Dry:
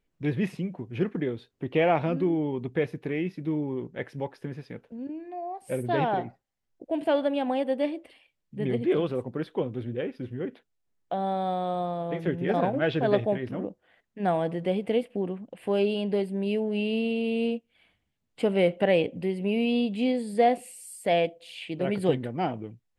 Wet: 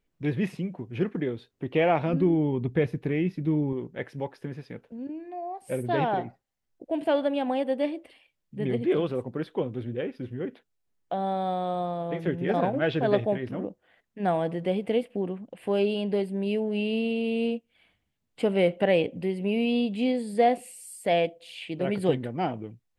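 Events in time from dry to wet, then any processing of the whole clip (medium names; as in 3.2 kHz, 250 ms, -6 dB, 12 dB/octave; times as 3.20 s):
2.13–3.73 s: bass shelf 170 Hz +11 dB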